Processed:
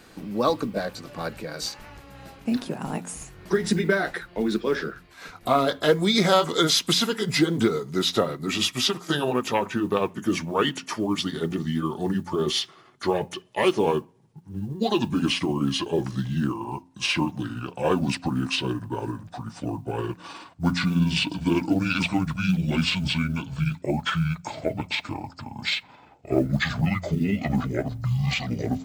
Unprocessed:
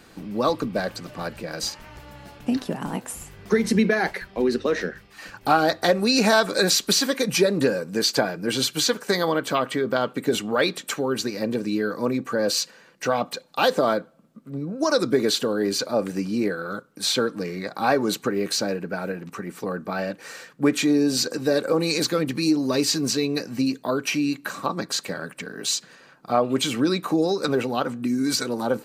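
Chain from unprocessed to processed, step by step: gliding pitch shift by -12 st starting unshifted; modulation noise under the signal 35 dB; de-hum 88.26 Hz, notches 3

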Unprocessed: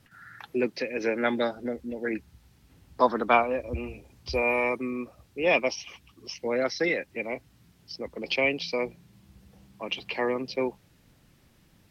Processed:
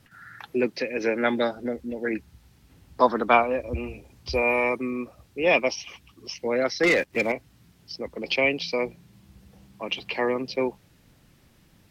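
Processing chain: 6.83–7.32 sample leveller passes 2; gain +2.5 dB

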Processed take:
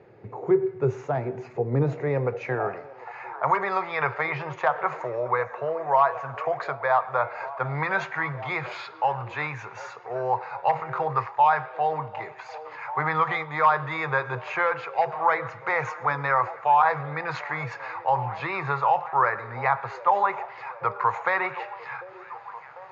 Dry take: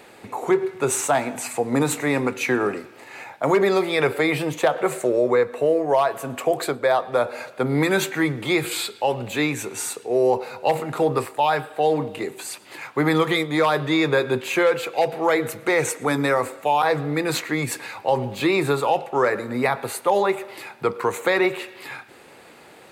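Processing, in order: rippled Chebyshev low-pass 6900 Hz, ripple 6 dB; resonant low shelf 180 Hz +13.5 dB, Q 3; delay with a stepping band-pass 0.746 s, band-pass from 440 Hz, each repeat 0.7 oct, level -12 dB; band-pass sweep 370 Hz -> 1000 Hz, 1.81–3.23; gain +9 dB

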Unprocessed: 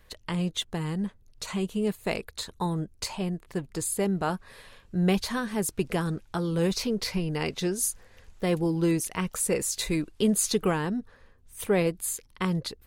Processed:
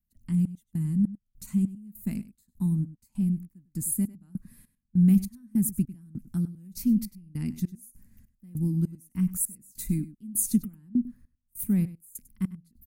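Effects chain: EQ curve 110 Hz 0 dB, 240 Hz +9 dB, 440 Hz -27 dB, 800 Hz -25 dB, 2100 Hz -17 dB, 3500 Hz -23 dB, 15000 Hz +11 dB; step gate ".xx..xx." 100 bpm -24 dB; outdoor echo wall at 17 m, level -16 dB

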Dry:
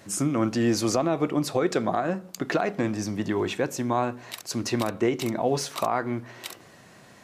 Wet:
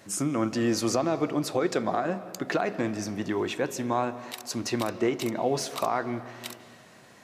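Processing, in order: low shelf 140 Hz -5.5 dB; reverb RT60 1.8 s, pre-delay 0.115 s, DRR 14 dB; gain -1.5 dB

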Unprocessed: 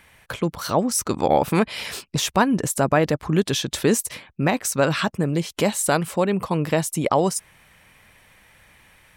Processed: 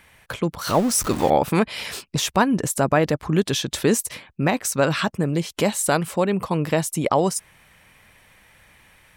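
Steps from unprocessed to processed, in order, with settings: 0.67–1.3 zero-crossing step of -26 dBFS

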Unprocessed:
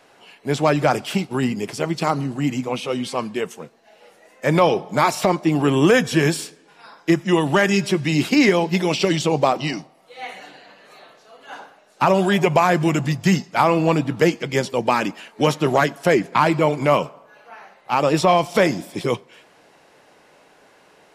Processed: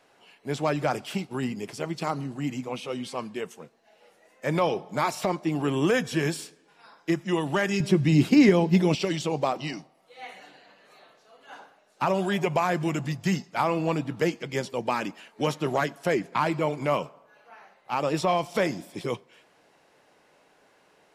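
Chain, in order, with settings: 7.8–8.95 low shelf 380 Hz +12 dB; gain -8.5 dB

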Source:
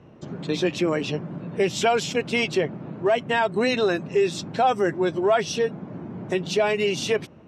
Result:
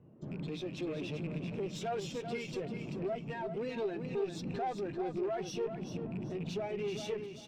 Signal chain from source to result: rattling part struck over -31 dBFS, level -24 dBFS; compressor, threshold -26 dBFS, peak gain reduction 10.5 dB; limiter -24 dBFS, peak gain reduction 7 dB; one-sided clip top -38.5 dBFS, bottom -28.5 dBFS; feedback echo 0.389 s, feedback 41%, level -5.5 dB; spectral expander 1.5:1; gain -1.5 dB

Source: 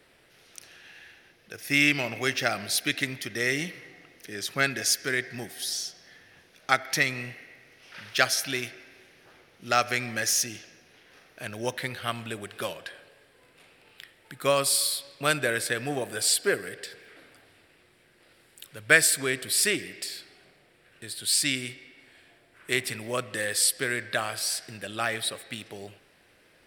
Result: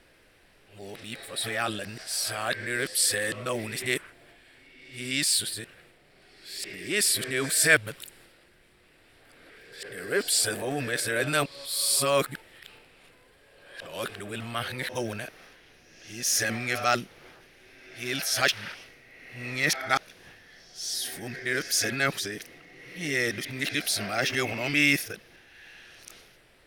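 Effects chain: whole clip reversed; transient shaper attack -3 dB, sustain +6 dB; added noise brown -67 dBFS

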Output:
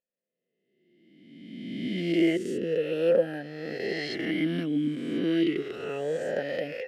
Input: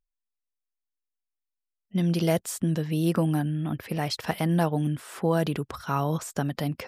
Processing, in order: spectral swells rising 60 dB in 1.66 s; vowel sweep e-i 0.31 Hz; gain +8 dB

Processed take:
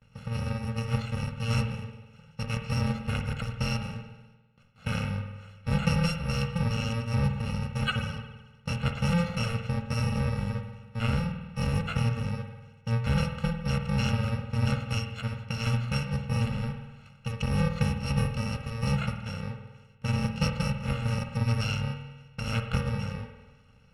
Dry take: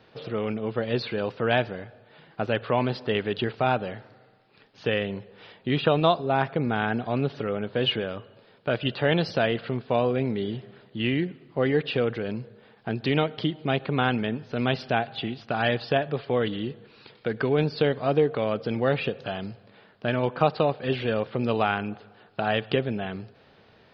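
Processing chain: FFT order left unsorted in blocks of 128 samples; LPF 2400 Hz 12 dB/oct; gate with hold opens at -57 dBFS; low shelf 120 Hz +9.5 dB; spring tank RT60 1.2 s, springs 50 ms, chirp 65 ms, DRR 6 dB; gain +1.5 dB

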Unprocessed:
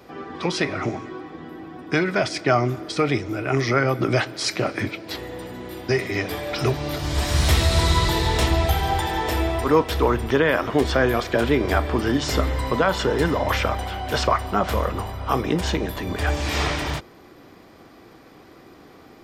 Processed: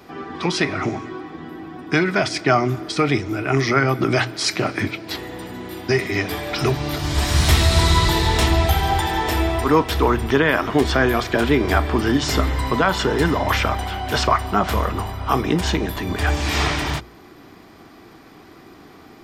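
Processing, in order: bell 530 Hz -8.5 dB 0.31 oct; notches 60/120 Hz; gain +3.5 dB

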